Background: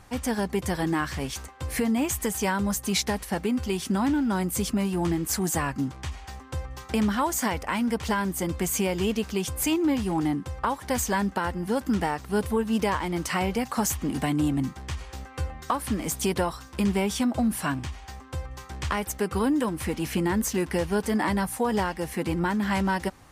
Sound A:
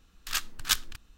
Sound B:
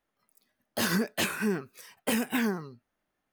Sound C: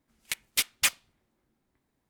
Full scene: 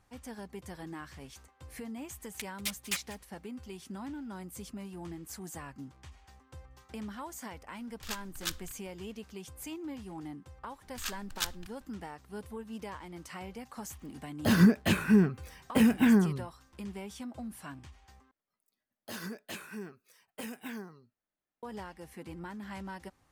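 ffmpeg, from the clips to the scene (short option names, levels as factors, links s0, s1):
-filter_complex "[1:a]asplit=2[s0][s1];[2:a]asplit=2[s2][s3];[0:a]volume=0.141[s4];[3:a]aecho=1:1:190:0.112[s5];[s0]acontrast=41[s6];[s2]bass=f=250:g=14,treble=f=4000:g=-6[s7];[s4]asplit=2[s8][s9];[s8]atrim=end=18.314[s10];[s3]atrim=end=3.32,asetpts=PTS-STARTPTS,volume=0.211[s11];[s9]atrim=start=21.626[s12];[s5]atrim=end=2.09,asetpts=PTS-STARTPTS,volume=0.335,afade=t=in:d=0.004:c=hsin,afade=t=out:st=2.086:d=0.004:c=hsin,adelay=2080[s13];[s6]atrim=end=1.17,asetpts=PTS-STARTPTS,volume=0.178,afade=t=in:d=0.004:c=hsin,afade=t=out:st=1.166:d=0.004:c=hsin,adelay=7760[s14];[s1]atrim=end=1.17,asetpts=PTS-STARTPTS,volume=0.398,afade=t=in:d=0.004:c=hsin,afade=t=out:st=1.166:d=0.004:c=hsin,adelay=10710[s15];[s7]atrim=end=3.32,asetpts=PTS-STARTPTS,volume=0.891,afade=t=in:d=0.004:c=hsin,afade=t=out:st=3.316:d=0.004:c=hsin,adelay=13680[s16];[s10][s11]acrossfade=d=0.004:c1=hsin:c2=hsin[s17];[s17][s12]acrossfade=d=0.004:c1=hsin:c2=hsin[s18];[s18][s13][s14][s15][s16]amix=inputs=5:normalize=0"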